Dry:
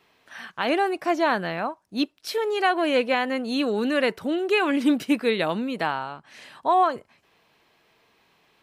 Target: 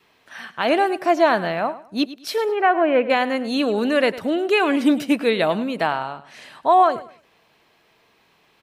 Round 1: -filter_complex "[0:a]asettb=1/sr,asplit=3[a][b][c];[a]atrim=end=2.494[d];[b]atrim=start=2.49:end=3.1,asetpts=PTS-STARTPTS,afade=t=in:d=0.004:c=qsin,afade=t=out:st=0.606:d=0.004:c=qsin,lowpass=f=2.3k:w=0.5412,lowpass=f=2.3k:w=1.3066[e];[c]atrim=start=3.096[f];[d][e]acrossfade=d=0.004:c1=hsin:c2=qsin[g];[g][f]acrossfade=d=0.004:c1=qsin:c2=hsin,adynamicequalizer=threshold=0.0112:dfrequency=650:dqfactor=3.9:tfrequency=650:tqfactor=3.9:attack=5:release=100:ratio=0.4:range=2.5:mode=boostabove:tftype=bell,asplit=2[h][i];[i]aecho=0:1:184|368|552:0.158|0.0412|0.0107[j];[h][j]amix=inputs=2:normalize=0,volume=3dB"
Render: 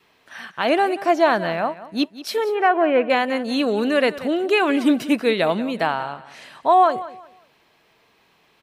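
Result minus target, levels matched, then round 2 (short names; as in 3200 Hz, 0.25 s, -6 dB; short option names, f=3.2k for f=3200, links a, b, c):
echo 80 ms late
-filter_complex "[0:a]asettb=1/sr,asplit=3[a][b][c];[a]atrim=end=2.494[d];[b]atrim=start=2.49:end=3.1,asetpts=PTS-STARTPTS,afade=t=in:d=0.004:c=qsin,afade=t=out:st=0.606:d=0.004:c=qsin,lowpass=f=2.3k:w=0.5412,lowpass=f=2.3k:w=1.3066[e];[c]atrim=start=3.096[f];[d][e]acrossfade=d=0.004:c1=hsin:c2=qsin[g];[g][f]acrossfade=d=0.004:c1=qsin:c2=hsin,adynamicequalizer=threshold=0.0112:dfrequency=650:dqfactor=3.9:tfrequency=650:tqfactor=3.9:attack=5:release=100:ratio=0.4:range=2.5:mode=boostabove:tftype=bell,asplit=2[h][i];[i]aecho=0:1:104|208|312:0.158|0.0412|0.0107[j];[h][j]amix=inputs=2:normalize=0,volume=3dB"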